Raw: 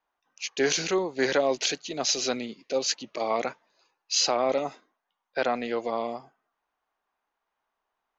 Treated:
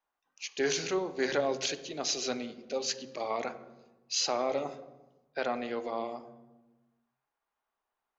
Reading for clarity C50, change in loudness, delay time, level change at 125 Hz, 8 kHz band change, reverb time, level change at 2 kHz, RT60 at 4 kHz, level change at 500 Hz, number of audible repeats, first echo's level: 14.0 dB, -5.5 dB, no echo, -4.0 dB, no reading, 1.1 s, -5.5 dB, 0.80 s, -5.5 dB, no echo, no echo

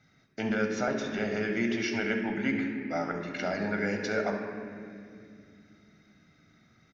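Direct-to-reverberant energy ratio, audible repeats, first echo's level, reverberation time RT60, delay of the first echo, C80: 3.0 dB, 1, -13.5 dB, 2.4 s, 69 ms, 6.0 dB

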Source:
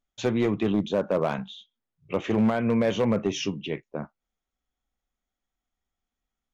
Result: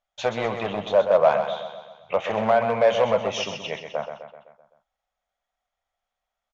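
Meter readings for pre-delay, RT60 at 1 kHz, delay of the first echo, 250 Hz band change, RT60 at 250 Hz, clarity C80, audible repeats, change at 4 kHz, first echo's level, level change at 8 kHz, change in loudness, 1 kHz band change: no reverb, no reverb, 128 ms, -9.5 dB, no reverb, no reverb, 6, +4.0 dB, -8.0 dB, no reading, +3.0 dB, +9.5 dB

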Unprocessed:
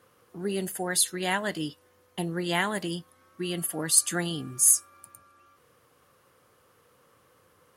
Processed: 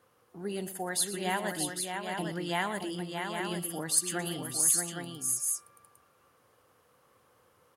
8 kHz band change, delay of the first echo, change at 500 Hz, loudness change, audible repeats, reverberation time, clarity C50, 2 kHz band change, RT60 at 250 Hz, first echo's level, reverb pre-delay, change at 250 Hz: -4.0 dB, 120 ms, -3.0 dB, -5.0 dB, 3, no reverb, no reverb, -3.5 dB, no reverb, -14.0 dB, no reverb, -4.0 dB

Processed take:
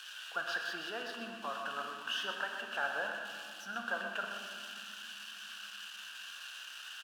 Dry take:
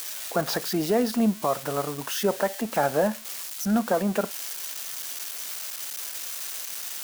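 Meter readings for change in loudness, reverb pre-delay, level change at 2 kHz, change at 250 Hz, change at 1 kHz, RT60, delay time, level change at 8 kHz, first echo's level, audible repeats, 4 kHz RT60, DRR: -12.5 dB, 6 ms, 0.0 dB, -25.0 dB, -10.5 dB, 2.8 s, 124 ms, -19.5 dB, -9.0 dB, 1, 1.3 s, 1.5 dB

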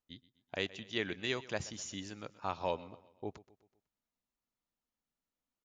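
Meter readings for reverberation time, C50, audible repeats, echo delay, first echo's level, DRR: no reverb, no reverb, 3, 125 ms, -19.0 dB, no reverb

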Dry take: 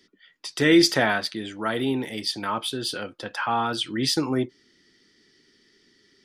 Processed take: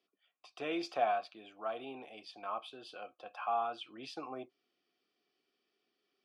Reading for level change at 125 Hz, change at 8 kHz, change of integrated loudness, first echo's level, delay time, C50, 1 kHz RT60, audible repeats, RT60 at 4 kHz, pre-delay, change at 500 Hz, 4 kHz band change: -30.5 dB, under -25 dB, -15.0 dB, no echo, no echo, no reverb, no reverb, no echo, no reverb, no reverb, -12.5 dB, -22.5 dB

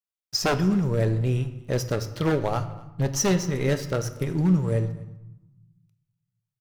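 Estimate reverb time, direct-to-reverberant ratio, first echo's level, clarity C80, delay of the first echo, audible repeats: 0.95 s, 9.5 dB, -23.0 dB, 14.0 dB, 246 ms, 1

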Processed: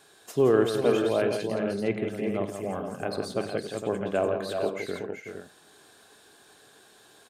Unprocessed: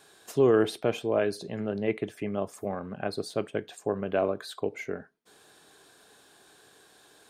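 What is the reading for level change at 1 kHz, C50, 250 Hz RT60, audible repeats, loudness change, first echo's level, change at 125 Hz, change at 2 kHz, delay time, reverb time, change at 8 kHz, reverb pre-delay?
+2.0 dB, no reverb, no reverb, 5, +2.0 dB, -18.5 dB, +1.5 dB, +2.0 dB, 53 ms, no reverb, +2.0 dB, no reverb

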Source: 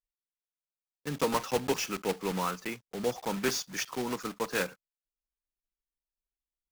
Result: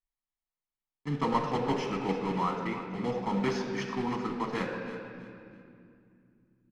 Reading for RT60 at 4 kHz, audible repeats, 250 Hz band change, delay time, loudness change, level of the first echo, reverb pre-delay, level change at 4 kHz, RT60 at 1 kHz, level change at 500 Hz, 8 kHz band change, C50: 1.9 s, 3, +4.5 dB, 326 ms, +0.5 dB, -13.5 dB, 7 ms, -5.5 dB, 2.3 s, -0.5 dB, -14.5 dB, 4.0 dB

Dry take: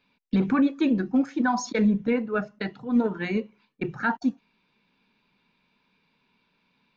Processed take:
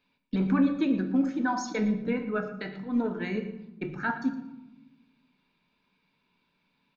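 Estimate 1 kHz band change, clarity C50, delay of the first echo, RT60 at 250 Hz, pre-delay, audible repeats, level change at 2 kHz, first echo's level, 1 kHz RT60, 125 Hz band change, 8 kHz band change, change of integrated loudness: -3.5 dB, 9.5 dB, 115 ms, 1.6 s, 3 ms, 1, -3.5 dB, -15.0 dB, 0.90 s, -2.5 dB, no reading, -3.5 dB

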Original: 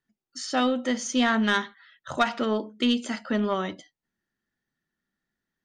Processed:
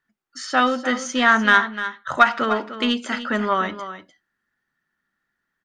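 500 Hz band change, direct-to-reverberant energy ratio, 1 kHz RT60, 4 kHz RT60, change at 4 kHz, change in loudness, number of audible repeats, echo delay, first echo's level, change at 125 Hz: +3.0 dB, no reverb, no reverb, no reverb, +4.0 dB, +6.0 dB, 1, 300 ms, -12.0 dB, no reading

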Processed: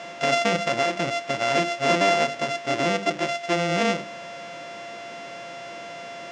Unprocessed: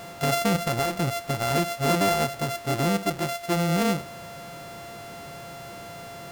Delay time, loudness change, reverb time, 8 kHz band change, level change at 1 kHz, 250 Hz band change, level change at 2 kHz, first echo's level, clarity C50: no echo, +2.0 dB, no reverb, -2.0 dB, +2.5 dB, -2.0 dB, +6.0 dB, no echo, no reverb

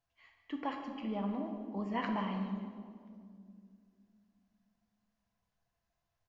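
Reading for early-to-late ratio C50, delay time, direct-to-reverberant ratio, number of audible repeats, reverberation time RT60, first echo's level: 4.5 dB, 147 ms, 2.0 dB, 1, 2.3 s, -14.5 dB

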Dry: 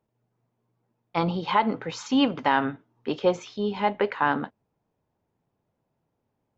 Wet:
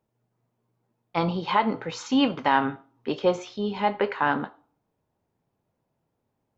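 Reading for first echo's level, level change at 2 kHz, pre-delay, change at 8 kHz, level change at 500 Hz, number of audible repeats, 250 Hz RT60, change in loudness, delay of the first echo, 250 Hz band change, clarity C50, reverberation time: no echo, +0.5 dB, 7 ms, no reading, 0.0 dB, no echo, 0.55 s, 0.0 dB, no echo, 0.0 dB, 18.5 dB, 0.45 s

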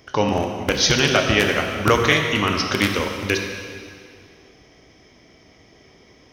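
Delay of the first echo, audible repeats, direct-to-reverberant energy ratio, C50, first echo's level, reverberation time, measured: no echo, no echo, 2.5 dB, 4.0 dB, no echo, 2.2 s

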